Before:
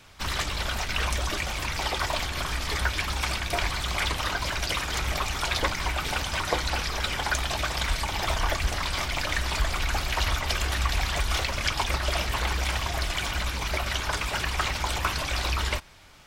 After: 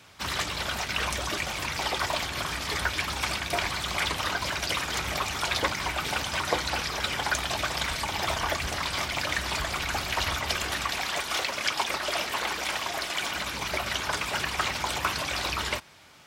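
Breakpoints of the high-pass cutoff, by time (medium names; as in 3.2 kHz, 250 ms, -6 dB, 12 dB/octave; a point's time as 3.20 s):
10.48 s 100 Hz
11.11 s 260 Hz
13.16 s 260 Hz
13.64 s 120 Hz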